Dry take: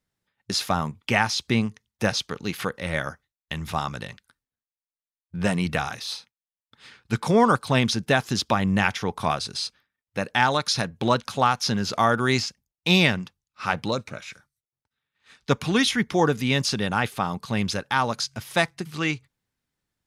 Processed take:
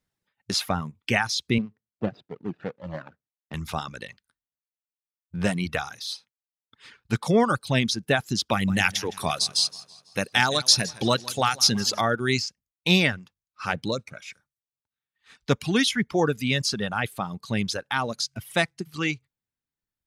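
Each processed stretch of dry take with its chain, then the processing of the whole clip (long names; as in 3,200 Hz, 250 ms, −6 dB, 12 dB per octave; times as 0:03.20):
0:01.58–0:03.54: running median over 41 samples + high-pass filter 130 Hz + high-frequency loss of the air 170 metres
0:08.51–0:12.01: high-shelf EQ 3,700 Hz +12 dB + feedback echo with a swinging delay time 165 ms, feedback 51%, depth 78 cents, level −11 dB
whole clip: reverb reduction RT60 1.6 s; dynamic equaliser 1,000 Hz, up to −6 dB, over −37 dBFS, Q 1.7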